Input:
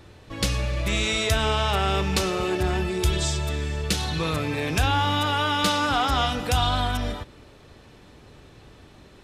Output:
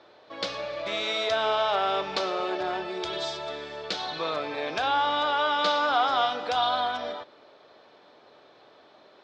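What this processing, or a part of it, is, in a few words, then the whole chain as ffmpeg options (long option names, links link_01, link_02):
phone earpiece: -af "highpass=500,equalizer=frequency=630:width_type=q:width=4:gain=6,equalizer=frequency=1900:width_type=q:width=4:gain=-5,equalizer=frequency=2700:width_type=q:width=4:gain=-8,lowpass=frequency=4400:width=0.5412,lowpass=frequency=4400:width=1.3066"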